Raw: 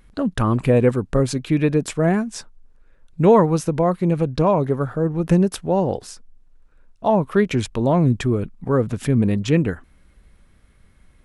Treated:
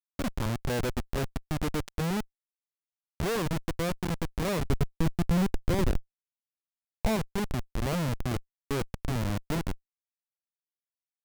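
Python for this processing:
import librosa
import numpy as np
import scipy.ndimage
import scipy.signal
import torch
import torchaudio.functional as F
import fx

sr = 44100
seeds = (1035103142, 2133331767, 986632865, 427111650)

y = fx.spec_gate(x, sr, threshold_db=-25, keep='strong')
y = fx.schmitt(y, sr, flips_db=-17.5)
y = fx.low_shelf(y, sr, hz=330.0, db=7.0, at=(4.65, 7.16))
y = y * librosa.db_to_amplitude(-8.0)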